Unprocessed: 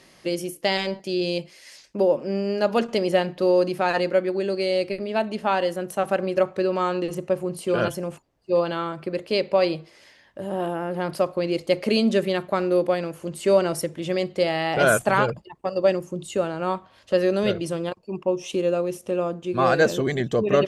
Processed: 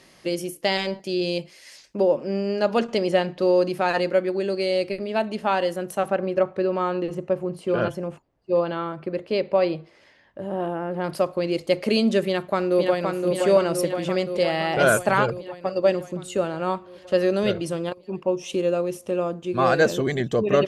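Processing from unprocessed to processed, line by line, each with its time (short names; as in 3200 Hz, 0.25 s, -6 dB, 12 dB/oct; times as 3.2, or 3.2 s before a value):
1.99–3.7 LPF 9100 Hz
6.08–11.04 LPF 2100 Hz 6 dB/oct
12.26–13.05 echo throw 0.52 s, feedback 70%, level -3.5 dB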